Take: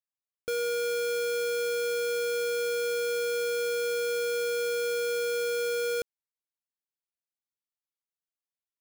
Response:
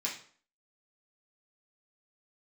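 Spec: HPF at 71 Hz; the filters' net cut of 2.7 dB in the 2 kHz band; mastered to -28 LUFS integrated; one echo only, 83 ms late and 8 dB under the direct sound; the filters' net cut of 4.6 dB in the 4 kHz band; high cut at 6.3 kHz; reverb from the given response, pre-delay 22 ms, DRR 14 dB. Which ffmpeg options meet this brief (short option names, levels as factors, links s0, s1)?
-filter_complex "[0:a]highpass=71,lowpass=6300,equalizer=f=2000:t=o:g=-3.5,equalizer=f=4000:t=o:g=-4,aecho=1:1:83:0.398,asplit=2[s0][s1];[1:a]atrim=start_sample=2205,adelay=22[s2];[s1][s2]afir=irnorm=-1:irlink=0,volume=0.133[s3];[s0][s3]amix=inputs=2:normalize=0,volume=2.11"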